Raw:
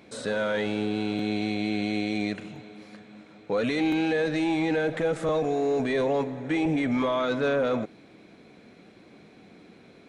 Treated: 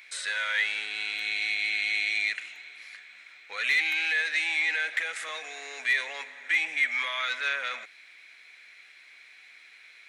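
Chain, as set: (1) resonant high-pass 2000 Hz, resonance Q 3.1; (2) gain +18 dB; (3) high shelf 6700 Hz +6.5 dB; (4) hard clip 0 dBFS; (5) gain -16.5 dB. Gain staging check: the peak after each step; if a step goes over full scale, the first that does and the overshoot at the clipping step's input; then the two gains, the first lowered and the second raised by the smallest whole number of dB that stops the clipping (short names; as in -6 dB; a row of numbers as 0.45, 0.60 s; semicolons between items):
-15.5, +2.5, +3.0, 0.0, -16.5 dBFS; step 2, 3.0 dB; step 2 +15 dB, step 5 -13.5 dB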